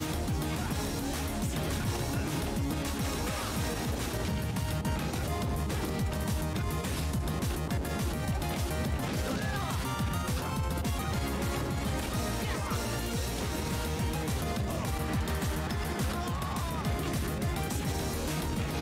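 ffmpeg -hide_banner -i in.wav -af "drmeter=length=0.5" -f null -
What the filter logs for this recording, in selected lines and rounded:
Channel 1: DR: 4.4
Overall DR: 4.4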